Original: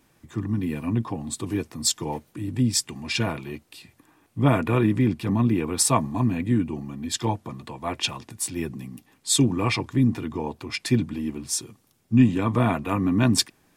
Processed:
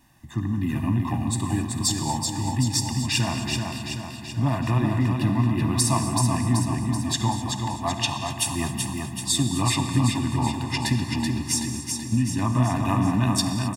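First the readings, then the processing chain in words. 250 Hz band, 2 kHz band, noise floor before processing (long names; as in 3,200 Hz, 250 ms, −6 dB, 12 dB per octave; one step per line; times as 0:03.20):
−1.0 dB, +0.5 dB, −64 dBFS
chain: comb filter 1.1 ms, depth 89%
downward compressor, threshold −20 dBFS, peak gain reduction 11 dB
on a send: repeating echo 381 ms, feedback 56%, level −4.5 dB
on the sum: reverb whose tail is shaped and stops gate 290 ms flat, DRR 7.5 dB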